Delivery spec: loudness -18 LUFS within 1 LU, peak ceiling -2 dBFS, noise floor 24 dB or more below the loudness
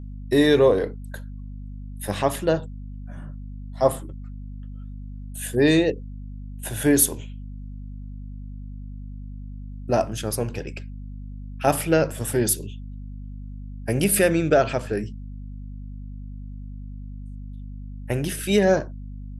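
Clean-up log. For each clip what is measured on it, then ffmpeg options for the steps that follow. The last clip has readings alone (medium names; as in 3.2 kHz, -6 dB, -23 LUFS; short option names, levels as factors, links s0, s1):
hum 50 Hz; highest harmonic 250 Hz; hum level -33 dBFS; loudness -22.5 LUFS; peak level -5.0 dBFS; loudness target -18.0 LUFS
-> -af "bandreject=f=50:t=h:w=6,bandreject=f=100:t=h:w=6,bandreject=f=150:t=h:w=6,bandreject=f=200:t=h:w=6,bandreject=f=250:t=h:w=6"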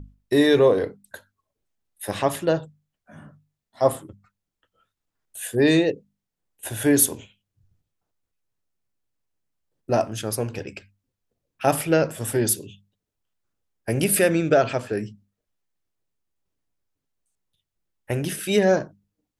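hum not found; loudness -22.0 LUFS; peak level -5.0 dBFS; loudness target -18.0 LUFS
-> -af "volume=1.58,alimiter=limit=0.794:level=0:latency=1"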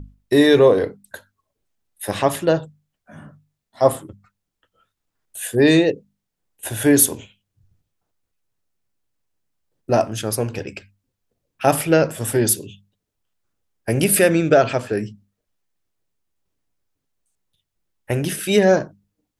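loudness -18.0 LUFS; peak level -2.0 dBFS; noise floor -80 dBFS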